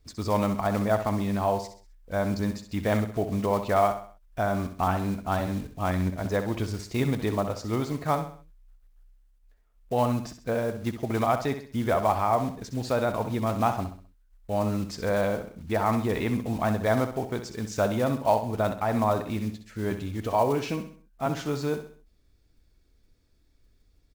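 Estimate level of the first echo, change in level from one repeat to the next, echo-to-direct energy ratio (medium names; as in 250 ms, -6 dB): -10.0 dB, -7.5 dB, -9.0 dB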